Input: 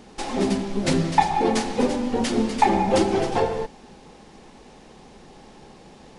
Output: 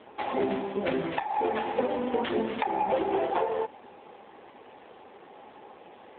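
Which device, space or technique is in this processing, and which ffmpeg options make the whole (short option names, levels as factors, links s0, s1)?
voicemail: -af "highpass=430,lowpass=3000,acompressor=threshold=0.0562:ratio=8,volume=1.5" -ar 8000 -c:a libopencore_amrnb -b:a 7400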